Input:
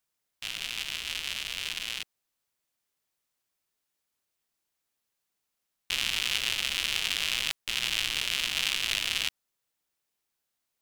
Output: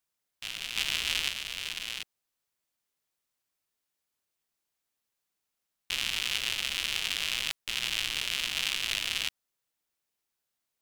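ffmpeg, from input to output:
-filter_complex "[0:a]asplit=3[a][b][c];[a]afade=t=out:st=0.75:d=0.02[d];[b]acontrast=71,afade=t=in:st=0.75:d=0.02,afade=t=out:st=1.28:d=0.02[e];[c]afade=t=in:st=1.28:d=0.02[f];[d][e][f]amix=inputs=3:normalize=0,volume=-2dB"

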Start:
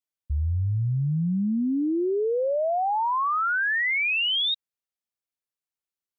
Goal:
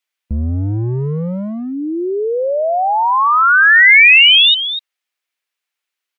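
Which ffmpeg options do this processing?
-filter_complex "[0:a]equalizer=f=2.3k:w=0.68:g=11.5,acrossover=split=250|610[a][b][c];[a]acrusher=bits=3:mix=0:aa=0.5[d];[c]aecho=1:1:247:0.299[e];[d][b][e]amix=inputs=3:normalize=0,volume=6.5dB"

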